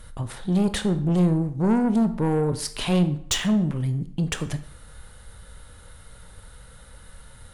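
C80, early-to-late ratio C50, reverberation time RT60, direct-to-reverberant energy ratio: 16.5 dB, 13.5 dB, 0.60 s, 10.0 dB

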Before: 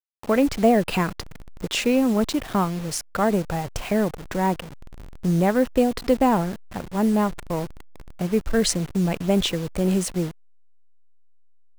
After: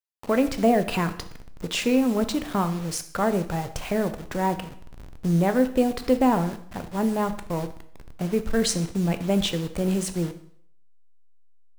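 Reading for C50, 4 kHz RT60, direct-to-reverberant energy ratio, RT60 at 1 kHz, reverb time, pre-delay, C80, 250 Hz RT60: 13.0 dB, 0.55 s, 9.0 dB, 0.60 s, 0.65 s, 6 ms, 16.0 dB, 0.60 s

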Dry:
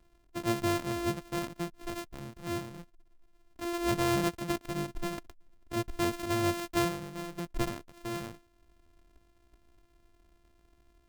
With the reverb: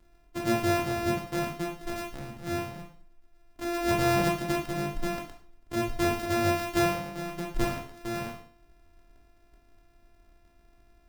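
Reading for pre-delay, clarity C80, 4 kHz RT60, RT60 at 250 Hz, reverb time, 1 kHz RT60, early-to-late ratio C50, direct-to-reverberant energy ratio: 7 ms, 12.0 dB, 0.45 s, 0.45 s, 0.45 s, 0.45 s, 7.5 dB, 1.5 dB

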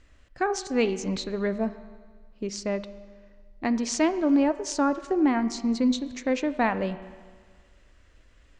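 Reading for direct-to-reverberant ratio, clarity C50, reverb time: 12.0 dB, 13.5 dB, 1.6 s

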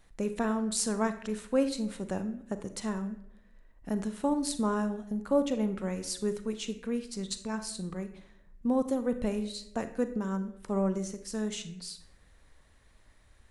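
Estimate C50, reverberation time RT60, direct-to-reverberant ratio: 11.5 dB, 0.70 s, 9.5 dB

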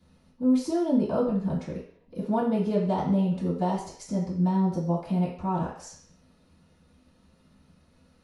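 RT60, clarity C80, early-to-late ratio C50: 0.55 s, 9.0 dB, 5.5 dB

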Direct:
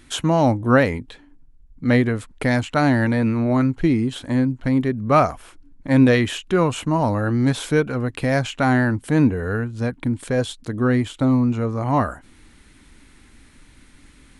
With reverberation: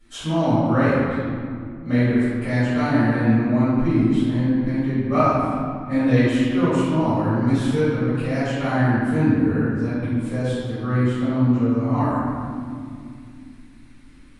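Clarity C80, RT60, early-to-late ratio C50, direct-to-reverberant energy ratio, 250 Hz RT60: -1.0 dB, 2.4 s, -4.0 dB, -16.5 dB, 3.8 s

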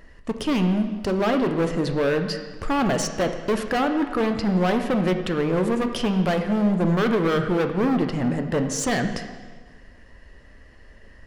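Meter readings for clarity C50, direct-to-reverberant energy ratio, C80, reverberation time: 8.0 dB, 6.0 dB, 9.5 dB, 1.5 s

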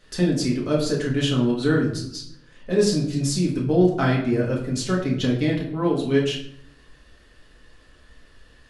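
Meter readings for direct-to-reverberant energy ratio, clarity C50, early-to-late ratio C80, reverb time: -3.5 dB, 6.0 dB, 9.5 dB, 0.70 s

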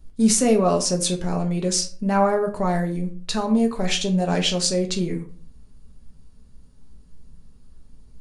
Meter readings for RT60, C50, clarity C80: 0.40 s, 12.0 dB, 16.5 dB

